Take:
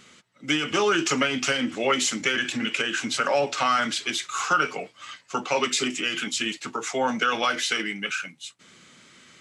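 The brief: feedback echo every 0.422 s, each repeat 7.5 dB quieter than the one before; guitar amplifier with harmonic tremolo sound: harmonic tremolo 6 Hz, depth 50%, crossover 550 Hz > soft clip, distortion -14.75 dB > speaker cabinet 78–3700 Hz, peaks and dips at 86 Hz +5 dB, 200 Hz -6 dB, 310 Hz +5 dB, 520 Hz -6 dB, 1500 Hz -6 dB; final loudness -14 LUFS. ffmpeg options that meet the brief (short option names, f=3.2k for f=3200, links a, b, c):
-filter_complex "[0:a]aecho=1:1:422|844|1266|1688|2110:0.422|0.177|0.0744|0.0312|0.0131,acrossover=split=550[a][b];[a]aeval=exprs='val(0)*(1-0.5/2+0.5/2*cos(2*PI*6*n/s))':c=same[c];[b]aeval=exprs='val(0)*(1-0.5/2-0.5/2*cos(2*PI*6*n/s))':c=same[d];[c][d]amix=inputs=2:normalize=0,asoftclip=threshold=-19.5dB,highpass=78,equalizer=f=86:t=q:w=4:g=5,equalizer=f=200:t=q:w=4:g=-6,equalizer=f=310:t=q:w=4:g=5,equalizer=f=520:t=q:w=4:g=-6,equalizer=f=1.5k:t=q:w=4:g=-6,lowpass=f=3.7k:w=0.5412,lowpass=f=3.7k:w=1.3066,volume=16dB"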